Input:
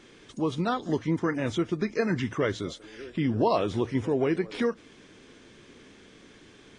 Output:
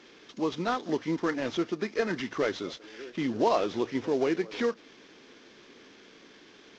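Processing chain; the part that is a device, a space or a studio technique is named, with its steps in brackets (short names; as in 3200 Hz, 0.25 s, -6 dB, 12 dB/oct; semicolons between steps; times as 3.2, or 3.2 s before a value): 1.72–2.37 HPF 140 Hz 6 dB/oct; early wireless headset (HPF 250 Hz 12 dB/oct; CVSD 32 kbps)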